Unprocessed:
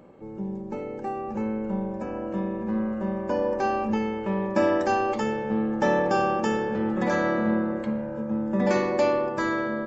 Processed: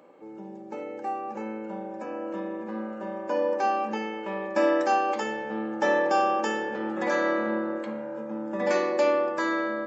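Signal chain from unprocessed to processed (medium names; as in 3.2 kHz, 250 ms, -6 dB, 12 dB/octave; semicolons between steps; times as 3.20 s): Bessel high-pass 460 Hz, order 2; on a send: reverberation RT60 0.50 s, pre-delay 3 ms, DRR 7 dB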